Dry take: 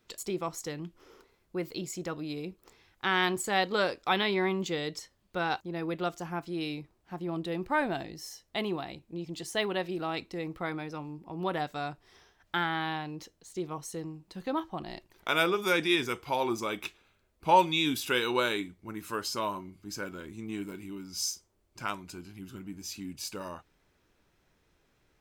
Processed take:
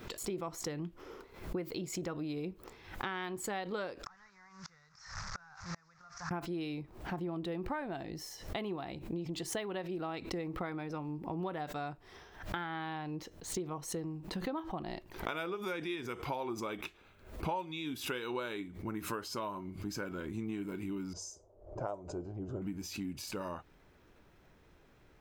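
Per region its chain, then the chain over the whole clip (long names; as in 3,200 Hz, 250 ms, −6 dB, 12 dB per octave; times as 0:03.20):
0:04.06–0:06.31: linear delta modulator 32 kbit/s, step −40 dBFS + drawn EQ curve 150 Hz 0 dB, 300 Hz −27 dB, 1,300 Hz +10 dB, 1,900 Hz +6 dB, 3,100 Hz −11 dB, 5,400 Hz +14 dB + gate with flip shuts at −29 dBFS, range −34 dB
0:21.13–0:22.62: low-pass that shuts in the quiet parts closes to 2,000 Hz, open at −31 dBFS + drawn EQ curve 120 Hz 0 dB, 220 Hz −9 dB, 610 Hz +13 dB, 920 Hz −2 dB, 2,300 Hz −22 dB, 4,300 Hz −16 dB, 6,900 Hz −1 dB, 13,000 Hz −23 dB
whole clip: downward compressor 6 to 1, threshold −43 dBFS; parametric band 8,400 Hz −8.5 dB 2.8 octaves; background raised ahead of every attack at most 100 dB per second; level +7.5 dB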